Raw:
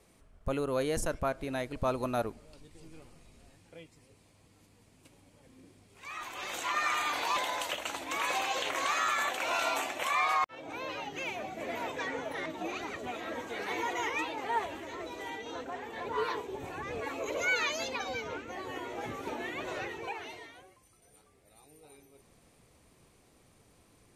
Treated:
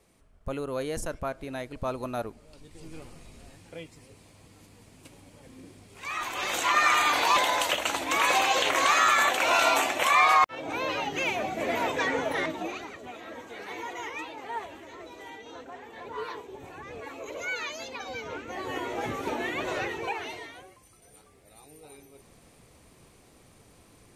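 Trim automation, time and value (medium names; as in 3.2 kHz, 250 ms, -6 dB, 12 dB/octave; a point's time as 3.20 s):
2.31 s -1 dB
2.96 s +8.5 dB
12.41 s +8.5 dB
12.94 s -3.5 dB
17.88 s -3.5 dB
18.74 s +6.5 dB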